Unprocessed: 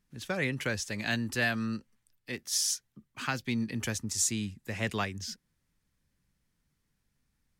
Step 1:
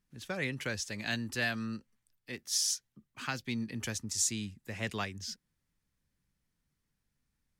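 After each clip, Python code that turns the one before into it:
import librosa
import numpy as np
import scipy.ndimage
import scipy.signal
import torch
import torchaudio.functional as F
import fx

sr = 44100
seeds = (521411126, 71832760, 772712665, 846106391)

y = fx.dynamic_eq(x, sr, hz=4800.0, q=0.78, threshold_db=-41.0, ratio=4.0, max_db=4)
y = y * librosa.db_to_amplitude(-4.5)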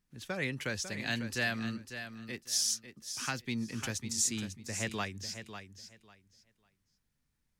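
y = fx.echo_feedback(x, sr, ms=548, feedback_pct=20, wet_db=-10)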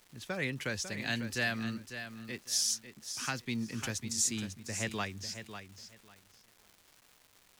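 y = fx.dmg_crackle(x, sr, seeds[0], per_s=560.0, level_db=-48.0)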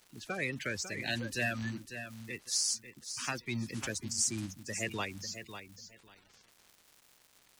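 y = fx.spec_quant(x, sr, step_db=30)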